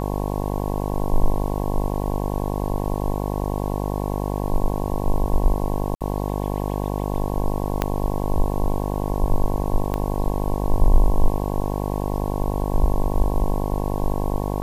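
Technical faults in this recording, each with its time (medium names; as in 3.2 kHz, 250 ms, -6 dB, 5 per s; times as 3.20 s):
buzz 50 Hz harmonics 22 -25 dBFS
5.95–6.01 s: dropout 57 ms
7.82 s: pop -6 dBFS
9.94 s: pop -12 dBFS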